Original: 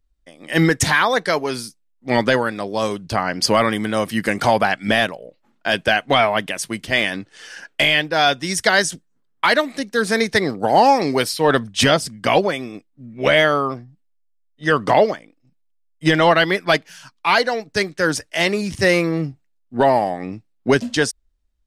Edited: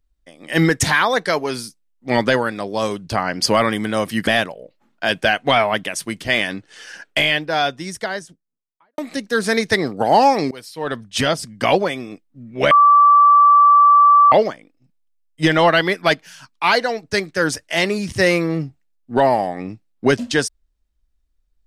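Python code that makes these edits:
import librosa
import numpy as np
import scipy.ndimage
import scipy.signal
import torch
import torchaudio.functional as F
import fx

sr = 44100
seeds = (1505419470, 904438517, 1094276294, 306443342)

y = fx.studio_fade_out(x, sr, start_s=7.66, length_s=1.95)
y = fx.edit(y, sr, fx.cut(start_s=4.27, length_s=0.63),
    fx.fade_in_from(start_s=11.14, length_s=1.18, floor_db=-22.0),
    fx.bleep(start_s=13.34, length_s=1.61, hz=1160.0, db=-7.0), tone=tone)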